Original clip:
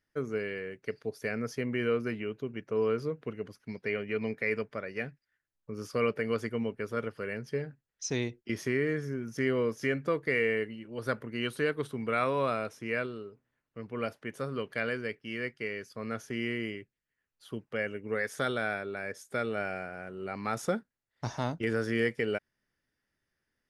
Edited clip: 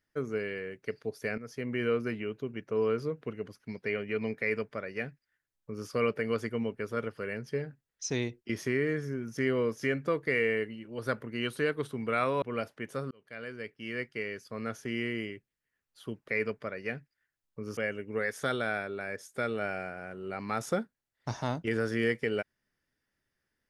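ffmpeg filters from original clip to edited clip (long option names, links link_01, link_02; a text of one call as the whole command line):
ffmpeg -i in.wav -filter_complex "[0:a]asplit=6[link_01][link_02][link_03][link_04][link_05][link_06];[link_01]atrim=end=1.38,asetpts=PTS-STARTPTS,afade=type=out:start_time=1.376:duration=0.004:curve=hsin:silence=0.199526[link_07];[link_02]atrim=start=1.38:end=12.422,asetpts=PTS-STARTPTS,afade=type=in:duration=0.55:curve=qsin:silence=0.199526[link_08];[link_03]atrim=start=13.868:end=14.56,asetpts=PTS-STARTPTS,afade=type=out:start_time=0.688:duration=0.004:curve=hsin[link_09];[link_04]atrim=start=14.56:end=17.732,asetpts=PTS-STARTPTS,afade=type=in:duration=0.9[link_10];[link_05]atrim=start=4.388:end=5.882[link_11];[link_06]atrim=start=17.728[link_12];[link_07][link_08]concat=n=2:v=0:a=1[link_13];[link_09][link_10]concat=n=2:v=0:a=1[link_14];[link_13][link_14]acrossfade=duration=0.004:curve1=hsin:curve2=hsin[link_15];[link_15][link_11]acrossfade=duration=0.004:curve1=hsin:curve2=hsin[link_16];[link_16][link_12]acrossfade=duration=0.004:curve1=hsin:curve2=hsin" out.wav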